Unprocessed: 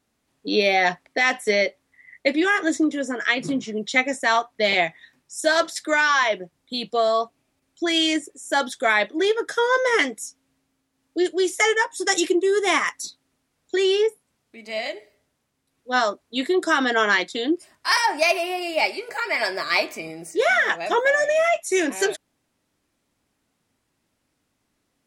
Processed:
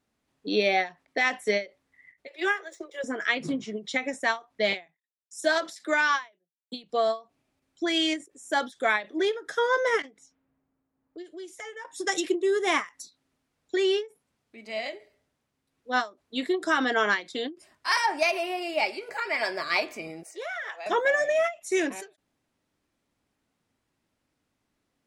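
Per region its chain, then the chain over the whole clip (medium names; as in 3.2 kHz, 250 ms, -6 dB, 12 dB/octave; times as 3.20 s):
2.27–3.04 s: median filter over 3 samples + steep high-pass 360 Hz 96 dB/octave + transient shaper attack 0 dB, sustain -9 dB
4.86–6.84 s: gate -48 dBFS, range -59 dB + steep high-pass 160 Hz 72 dB/octave
10.02–11.85 s: level-controlled noise filter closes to 1.2 kHz, open at -20.5 dBFS + compression 2.5:1, threshold -41 dBFS
20.23–20.86 s: high-pass 520 Hz 24 dB/octave + compression 3:1, threshold -31 dBFS
whole clip: treble shelf 6.2 kHz -6.5 dB; endings held to a fixed fall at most 240 dB/s; trim -4 dB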